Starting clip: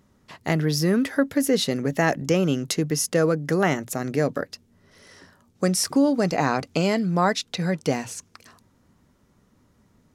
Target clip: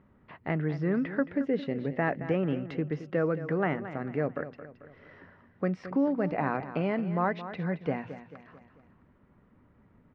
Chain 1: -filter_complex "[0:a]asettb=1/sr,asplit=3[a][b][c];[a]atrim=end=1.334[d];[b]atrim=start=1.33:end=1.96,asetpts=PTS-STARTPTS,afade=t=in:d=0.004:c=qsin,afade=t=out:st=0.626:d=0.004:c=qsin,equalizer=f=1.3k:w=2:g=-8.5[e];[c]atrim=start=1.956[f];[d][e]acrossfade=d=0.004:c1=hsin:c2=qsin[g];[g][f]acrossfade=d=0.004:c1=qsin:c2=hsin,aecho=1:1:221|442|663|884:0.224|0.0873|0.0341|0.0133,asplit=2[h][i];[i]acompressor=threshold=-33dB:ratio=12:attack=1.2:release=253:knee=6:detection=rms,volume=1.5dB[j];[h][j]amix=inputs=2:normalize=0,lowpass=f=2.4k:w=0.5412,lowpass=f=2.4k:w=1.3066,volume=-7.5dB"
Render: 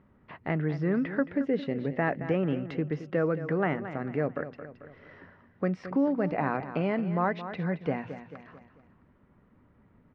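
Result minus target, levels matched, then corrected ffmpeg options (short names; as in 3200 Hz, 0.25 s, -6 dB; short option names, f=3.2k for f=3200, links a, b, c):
compressor: peak gain reduction -9.5 dB
-filter_complex "[0:a]asettb=1/sr,asplit=3[a][b][c];[a]atrim=end=1.334[d];[b]atrim=start=1.33:end=1.96,asetpts=PTS-STARTPTS,afade=t=in:d=0.004:c=qsin,afade=t=out:st=0.626:d=0.004:c=qsin,equalizer=f=1.3k:w=2:g=-8.5[e];[c]atrim=start=1.956[f];[d][e]acrossfade=d=0.004:c1=hsin:c2=qsin[g];[g][f]acrossfade=d=0.004:c1=qsin:c2=hsin,aecho=1:1:221|442|663|884:0.224|0.0873|0.0341|0.0133,asplit=2[h][i];[i]acompressor=threshold=-43.5dB:ratio=12:attack=1.2:release=253:knee=6:detection=rms,volume=1.5dB[j];[h][j]amix=inputs=2:normalize=0,lowpass=f=2.4k:w=0.5412,lowpass=f=2.4k:w=1.3066,volume=-7.5dB"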